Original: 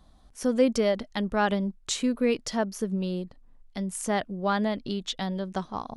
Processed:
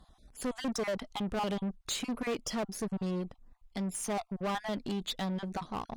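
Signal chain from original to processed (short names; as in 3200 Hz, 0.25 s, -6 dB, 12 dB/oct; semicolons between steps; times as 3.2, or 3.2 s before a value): random spectral dropouts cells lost 25%; soft clip -29 dBFS, distortion -8 dB; added harmonics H 6 -22 dB, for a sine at -29 dBFS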